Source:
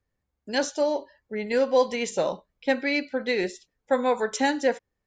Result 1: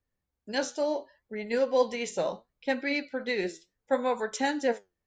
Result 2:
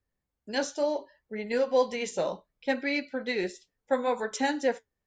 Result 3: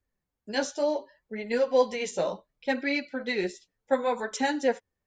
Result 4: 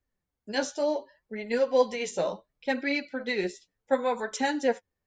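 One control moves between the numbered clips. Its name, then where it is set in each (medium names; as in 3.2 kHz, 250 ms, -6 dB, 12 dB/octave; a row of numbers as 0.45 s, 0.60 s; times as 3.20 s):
flange, regen: +72%, -57%, -9%, +23%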